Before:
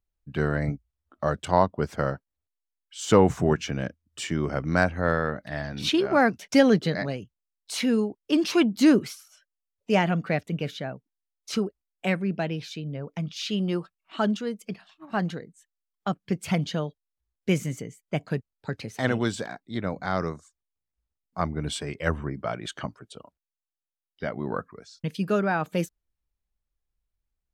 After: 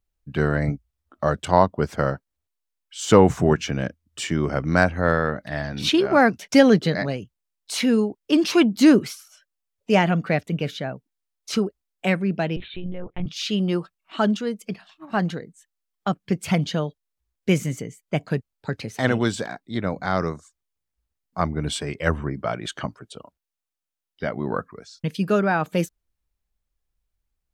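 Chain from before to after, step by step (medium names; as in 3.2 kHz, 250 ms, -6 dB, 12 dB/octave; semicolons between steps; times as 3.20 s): 12.56–13.26 s: monotone LPC vocoder at 8 kHz 180 Hz; trim +4 dB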